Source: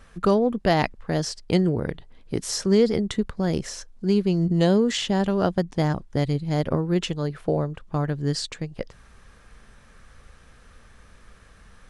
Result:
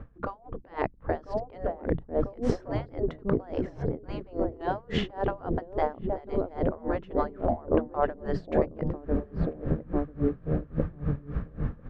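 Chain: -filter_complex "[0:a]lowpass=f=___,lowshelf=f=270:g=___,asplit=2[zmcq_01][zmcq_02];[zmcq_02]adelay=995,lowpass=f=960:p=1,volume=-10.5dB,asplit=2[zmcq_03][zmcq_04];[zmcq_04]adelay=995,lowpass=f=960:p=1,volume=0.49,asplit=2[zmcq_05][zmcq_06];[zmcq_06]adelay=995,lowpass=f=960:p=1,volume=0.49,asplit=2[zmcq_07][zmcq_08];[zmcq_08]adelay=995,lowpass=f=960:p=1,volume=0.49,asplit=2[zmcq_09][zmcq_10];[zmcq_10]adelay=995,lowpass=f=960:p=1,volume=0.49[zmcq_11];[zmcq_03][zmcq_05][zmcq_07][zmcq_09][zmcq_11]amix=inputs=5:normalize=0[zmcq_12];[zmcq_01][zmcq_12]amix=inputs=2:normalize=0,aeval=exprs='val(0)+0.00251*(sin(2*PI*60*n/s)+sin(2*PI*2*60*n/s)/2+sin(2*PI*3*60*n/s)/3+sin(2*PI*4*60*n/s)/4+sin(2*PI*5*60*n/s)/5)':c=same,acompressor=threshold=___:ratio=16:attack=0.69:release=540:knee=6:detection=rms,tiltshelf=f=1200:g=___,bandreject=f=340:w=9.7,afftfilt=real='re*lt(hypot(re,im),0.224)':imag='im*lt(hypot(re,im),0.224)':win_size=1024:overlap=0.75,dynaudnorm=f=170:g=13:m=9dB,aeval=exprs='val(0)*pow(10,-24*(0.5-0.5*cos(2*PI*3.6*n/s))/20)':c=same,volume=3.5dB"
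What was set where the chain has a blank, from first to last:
2100, 4.5, -19dB, 8.5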